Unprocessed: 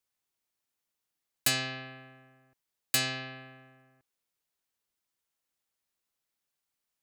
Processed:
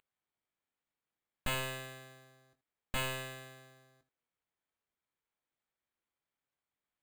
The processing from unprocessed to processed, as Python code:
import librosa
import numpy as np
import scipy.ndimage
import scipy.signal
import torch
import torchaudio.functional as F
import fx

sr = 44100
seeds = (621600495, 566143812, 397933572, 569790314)

p1 = fx.cheby_harmonics(x, sr, harmonics=(5, 8), levels_db=(-22, -9), full_scale_db=-12.0)
p2 = fx.room_early_taps(p1, sr, ms=(21, 79), db=(-8.5, -16.5))
p3 = np.clip(10.0 ** (28.5 / 20.0) * p2, -1.0, 1.0) / 10.0 ** (28.5 / 20.0)
p4 = p2 + F.gain(torch.from_numpy(p3), -5.0).numpy()
p5 = p4 + 10.0 ** (-44.0 / 20.0) * np.sin(2.0 * np.pi * 3200.0 * np.arange(len(p4)) / sr)
p6 = np.repeat(scipy.signal.resample_poly(p5, 1, 8), 8)[:len(p5)]
y = F.gain(torch.from_numpy(p6), -8.0).numpy()